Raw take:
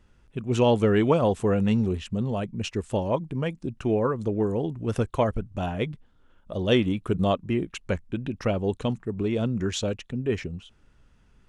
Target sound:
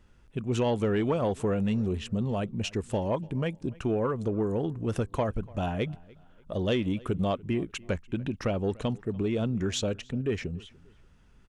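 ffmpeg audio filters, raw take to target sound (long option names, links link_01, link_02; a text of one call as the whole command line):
ffmpeg -i in.wav -filter_complex "[0:a]acompressor=threshold=-24dB:ratio=2.5,asoftclip=type=tanh:threshold=-16.5dB,asplit=2[link_01][link_02];[link_02]adelay=292,lowpass=frequency=4200:poles=1,volume=-23.5dB,asplit=2[link_03][link_04];[link_04]adelay=292,lowpass=frequency=4200:poles=1,volume=0.36[link_05];[link_03][link_05]amix=inputs=2:normalize=0[link_06];[link_01][link_06]amix=inputs=2:normalize=0" out.wav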